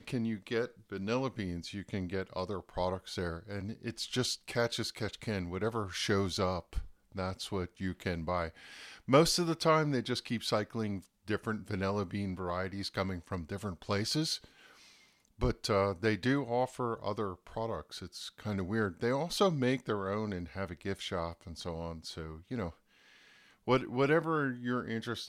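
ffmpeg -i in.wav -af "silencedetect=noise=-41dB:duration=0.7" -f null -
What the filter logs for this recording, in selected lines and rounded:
silence_start: 14.44
silence_end: 15.41 | silence_duration: 0.97
silence_start: 22.70
silence_end: 23.68 | silence_duration: 0.97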